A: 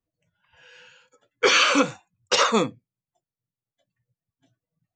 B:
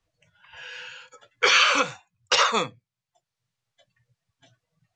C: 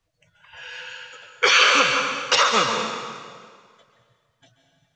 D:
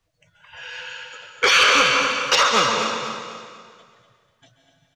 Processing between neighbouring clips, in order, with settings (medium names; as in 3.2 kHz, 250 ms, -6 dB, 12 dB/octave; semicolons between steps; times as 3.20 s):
low-pass 6.5 kHz 12 dB/octave; peaking EQ 270 Hz -14.5 dB 1.7 oct; three bands compressed up and down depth 40%; trim +2.5 dB
plate-style reverb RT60 1.9 s, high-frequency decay 0.85×, pre-delay 120 ms, DRR 3 dB; trim +2 dB
saturation -8.5 dBFS, distortion -19 dB; on a send: feedback delay 246 ms, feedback 39%, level -10 dB; on the sum: trim +2 dB